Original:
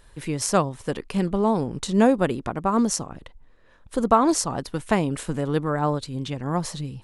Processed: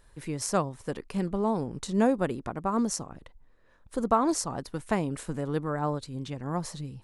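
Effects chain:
parametric band 3,100 Hz −4 dB 0.74 octaves
level −6 dB

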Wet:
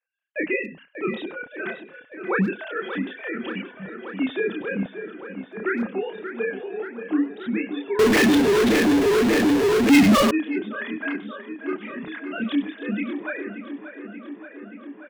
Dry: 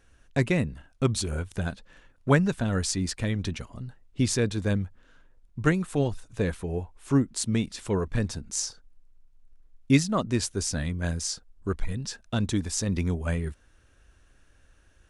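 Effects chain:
three sine waves on the formant tracks
multi-voice chorus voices 4, 0.7 Hz, delay 30 ms, depth 5 ms
on a send: tape delay 580 ms, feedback 86%, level −10 dB, low-pass 2,900 Hz
on the sum: noise gate with hold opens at −41 dBFS
spectral tilt +2 dB per octave
far-end echo of a speakerphone 100 ms, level −18 dB
0:07.99–0:10.31: power curve on the samples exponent 0.35
in parallel at −2 dB: brickwall limiter −23 dBFS, peak gain reduction 12 dB
on the sum: parametric band 1,100 Hz −5.5 dB 1.2 octaves
level +2 dB

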